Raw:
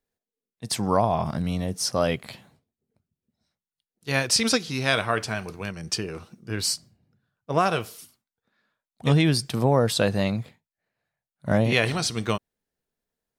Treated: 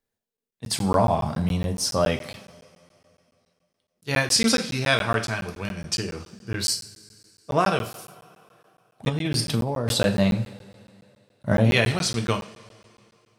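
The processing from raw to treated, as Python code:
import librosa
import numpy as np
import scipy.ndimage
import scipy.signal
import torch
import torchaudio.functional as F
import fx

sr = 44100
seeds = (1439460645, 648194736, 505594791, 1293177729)

y = fx.rev_double_slope(x, sr, seeds[0], early_s=0.4, late_s=2.7, knee_db=-20, drr_db=4.5)
y = fx.over_compress(y, sr, threshold_db=-23.0, ratio=-1.0, at=(9.08, 9.91), fade=0.02)
y = fx.buffer_crackle(y, sr, first_s=0.37, period_s=0.14, block=512, kind='zero')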